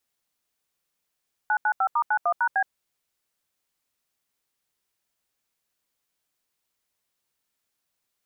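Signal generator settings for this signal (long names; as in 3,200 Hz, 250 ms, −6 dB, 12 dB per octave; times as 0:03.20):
touch tones "995*91#B", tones 70 ms, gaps 81 ms, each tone −22 dBFS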